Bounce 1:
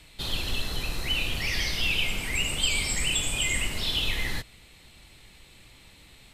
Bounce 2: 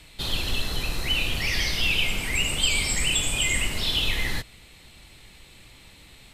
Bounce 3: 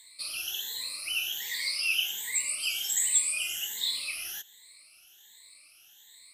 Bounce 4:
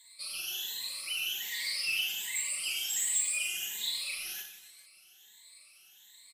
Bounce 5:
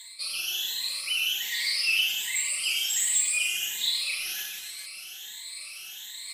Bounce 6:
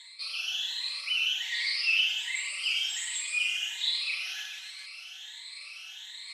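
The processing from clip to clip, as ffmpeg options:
ffmpeg -i in.wav -af "acontrast=22,volume=-2dB" out.wav
ffmpeg -i in.wav -af "afftfilt=real='re*pow(10,23/40*sin(2*PI*(1*log(max(b,1)*sr/1024/100)/log(2)-(1.3)*(pts-256)/sr)))':imag='im*pow(10,23/40*sin(2*PI*(1*log(max(b,1)*sr/1024/100)/log(2)-(1.3)*(pts-256)/sr)))':win_size=1024:overlap=0.75,aderivative,volume=-4.5dB" out.wav
ffmpeg -i in.wav -filter_complex "[0:a]aecho=1:1:5.3:0.97,asoftclip=type=tanh:threshold=-18.5dB,asplit=2[link_01][link_02];[link_02]aecho=0:1:40|96|174.4|284.2|437.8:0.631|0.398|0.251|0.158|0.1[link_03];[link_01][link_03]amix=inputs=2:normalize=0,volume=-7dB" out.wav
ffmpeg -i in.wav -af "highshelf=frequency=5600:gain=-11.5,areverse,acompressor=mode=upward:threshold=-40dB:ratio=2.5,areverse,highshelf=frequency=2100:gain=11,volume=2.5dB" out.wav
ffmpeg -i in.wav -af "highpass=790,lowpass=4400" out.wav

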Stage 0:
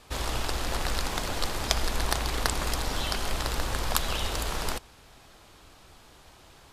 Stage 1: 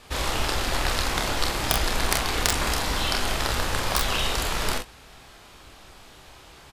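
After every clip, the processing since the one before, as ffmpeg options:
ffmpeg -i in.wav -af "aeval=exprs='(mod(2.24*val(0)+1,2)-1)/2.24':channel_layout=same,equalizer=frequency=2200:width_type=o:width=1.6:gain=3,aecho=1:1:29|45|65:0.531|0.501|0.15,volume=2.5dB" out.wav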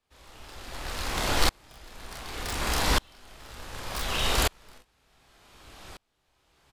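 ffmpeg -i in.wav -filter_complex "[0:a]acrossover=split=120[link_01][link_02];[link_02]asoftclip=type=hard:threshold=-20dB[link_03];[link_01][link_03]amix=inputs=2:normalize=0,aeval=exprs='val(0)*pow(10,-36*if(lt(mod(-0.67*n/s,1),2*abs(-0.67)/1000),1-mod(-0.67*n/s,1)/(2*abs(-0.67)/1000),(mod(-0.67*n/s,1)-2*abs(-0.67)/1000)/(1-2*abs(-0.67)/1000))/20)':channel_layout=same,volume=4.5dB" out.wav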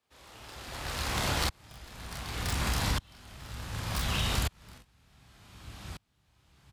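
ffmpeg -i in.wav -af "highpass=94,asubboost=boost=7.5:cutoff=160,acompressor=threshold=-26dB:ratio=6" out.wav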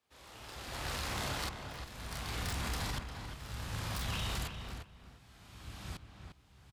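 ffmpeg -i in.wav -filter_complex "[0:a]alimiter=level_in=4dB:limit=-24dB:level=0:latency=1:release=24,volume=-4dB,asplit=2[link_01][link_02];[link_02]adelay=351,lowpass=frequency=2700:poles=1,volume=-6.5dB,asplit=2[link_03][link_04];[link_04]adelay=351,lowpass=frequency=2700:poles=1,volume=0.2,asplit=2[link_05][link_06];[link_06]adelay=351,lowpass=frequency=2700:poles=1,volume=0.2[link_07];[link_01][link_03][link_05][link_07]amix=inputs=4:normalize=0,volume=-1.5dB" out.wav

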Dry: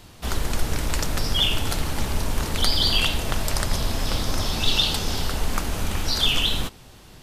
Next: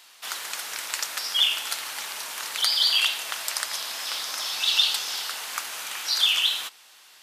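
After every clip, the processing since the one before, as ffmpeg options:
ffmpeg -i in.wav -af "highpass=1300,volume=1dB" out.wav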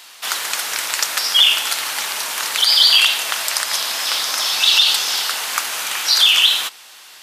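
ffmpeg -i in.wav -af "alimiter=level_in=11.5dB:limit=-1dB:release=50:level=0:latency=1,volume=-1dB" out.wav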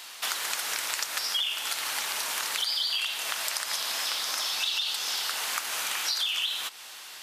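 ffmpeg -i in.wav -af "acompressor=threshold=-26dB:ratio=5,volume=-2dB" out.wav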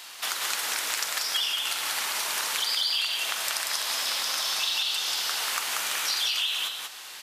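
ffmpeg -i in.wav -af "aecho=1:1:46.65|186.6:0.282|0.708" out.wav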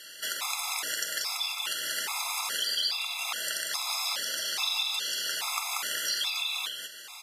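ffmpeg -i in.wav -af "afftfilt=real='re*gt(sin(2*PI*1.2*pts/sr)*(1-2*mod(floor(b*sr/1024/680),2)),0)':imag='im*gt(sin(2*PI*1.2*pts/sr)*(1-2*mod(floor(b*sr/1024/680),2)),0)':win_size=1024:overlap=0.75" out.wav

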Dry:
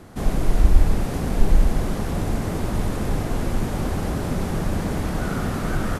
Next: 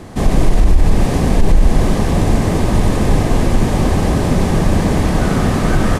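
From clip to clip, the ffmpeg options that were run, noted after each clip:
ffmpeg -i in.wav -af "equalizer=frequency=12000:width_type=o:width=0.28:gain=-9,bandreject=frequency=1400:width=7,alimiter=level_in=11.5dB:limit=-1dB:release=50:level=0:latency=1,volume=-1dB" out.wav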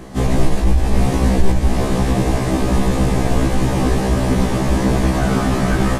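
ffmpeg -i in.wav -af "afftfilt=real='re*1.73*eq(mod(b,3),0)':imag='im*1.73*eq(mod(b,3),0)':win_size=2048:overlap=0.75,volume=1dB" out.wav

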